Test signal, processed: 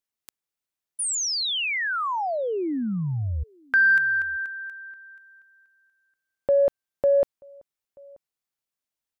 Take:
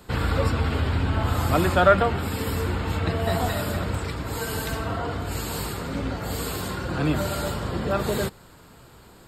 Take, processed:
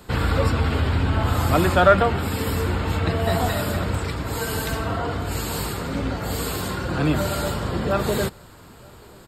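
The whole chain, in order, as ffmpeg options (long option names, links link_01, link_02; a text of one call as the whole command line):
ffmpeg -i in.wav -filter_complex "[0:a]asplit=2[link_01][link_02];[link_02]adelay=932.9,volume=-28dB,highshelf=frequency=4000:gain=-21[link_03];[link_01][link_03]amix=inputs=2:normalize=0,asplit=2[link_04][link_05];[link_05]asoftclip=type=tanh:threshold=-17dB,volume=-12dB[link_06];[link_04][link_06]amix=inputs=2:normalize=0,volume=1dB" out.wav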